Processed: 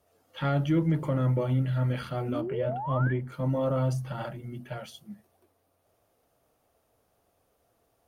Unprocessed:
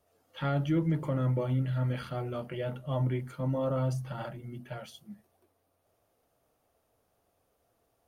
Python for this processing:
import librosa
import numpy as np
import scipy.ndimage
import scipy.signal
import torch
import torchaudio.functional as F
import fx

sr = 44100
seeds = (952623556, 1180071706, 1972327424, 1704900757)

y = fx.spec_paint(x, sr, seeds[0], shape='rise', start_s=2.28, length_s=0.85, low_hz=230.0, high_hz=1800.0, level_db=-36.0)
y = fx.cheby_harmonics(y, sr, harmonics=(6,), levels_db=(-38,), full_scale_db=-19.0)
y = fx.high_shelf(y, sr, hz=2600.0, db=-12.0, at=(2.41, 3.32))
y = F.gain(torch.from_numpy(y), 3.0).numpy()